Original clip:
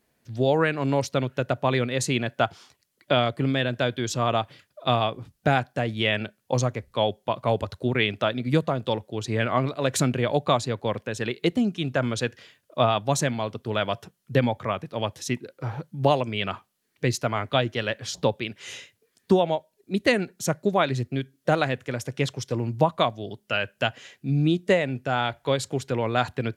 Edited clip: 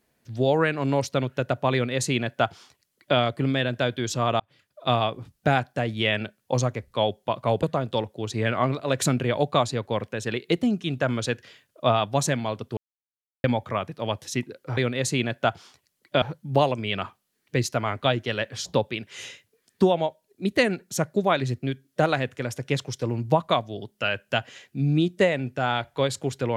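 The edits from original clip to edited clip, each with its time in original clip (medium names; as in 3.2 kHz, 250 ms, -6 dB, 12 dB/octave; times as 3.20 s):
1.73–3.18 s: copy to 15.71 s
4.40–4.91 s: fade in
7.63–8.57 s: delete
13.71–14.38 s: mute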